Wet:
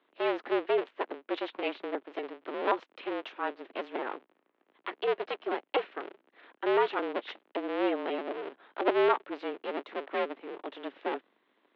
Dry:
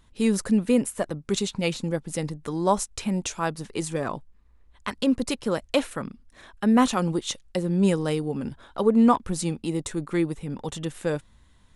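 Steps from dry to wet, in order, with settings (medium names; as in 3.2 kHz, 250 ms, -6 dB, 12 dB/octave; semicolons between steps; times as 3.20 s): cycle switcher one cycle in 2, inverted; mistuned SSB +51 Hz 250–3300 Hz; trim -6 dB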